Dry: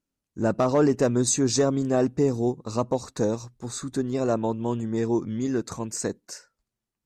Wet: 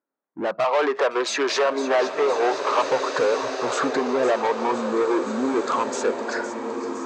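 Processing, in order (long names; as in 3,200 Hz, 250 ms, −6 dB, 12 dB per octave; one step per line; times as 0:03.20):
adaptive Wiener filter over 15 samples
0:00.64–0:02.82: three-way crossover with the lows and the highs turned down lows −16 dB, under 540 Hz, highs −21 dB, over 4,400 Hz
downward compressor 6 to 1, threshold −33 dBFS, peak gain reduction 14 dB
mid-hump overdrive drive 28 dB, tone 3,000 Hz, clips at −21 dBFS
high-frequency loss of the air 66 metres
low-pass that shuts in the quiet parts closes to 2,700 Hz, open at −26.5 dBFS
high-pass filter 340 Hz 12 dB per octave
delay with a high-pass on its return 511 ms, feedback 73%, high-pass 2,200 Hz, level −11 dB
noise reduction from a noise print of the clip's start 13 dB
automatic gain control gain up to 9 dB
slow-attack reverb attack 1,950 ms, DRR 5.5 dB
level +1 dB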